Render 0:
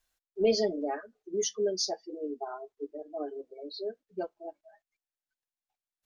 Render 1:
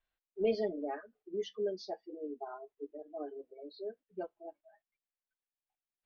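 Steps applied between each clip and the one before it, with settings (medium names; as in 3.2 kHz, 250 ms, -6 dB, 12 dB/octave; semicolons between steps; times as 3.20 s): low-pass 3.4 kHz 24 dB/octave; trim -5.5 dB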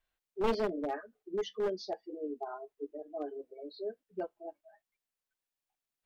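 one-sided wavefolder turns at -30.5 dBFS; trim +3 dB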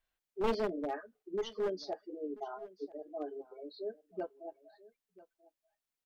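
delay 987 ms -20 dB; trim -1.5 dB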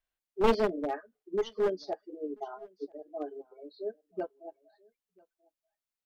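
upward expansion 1.5:1, over -52 dBFS; trim +8 dB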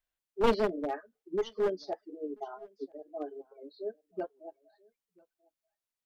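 warped record 78 rpm, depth 100 cents; trim -1 dB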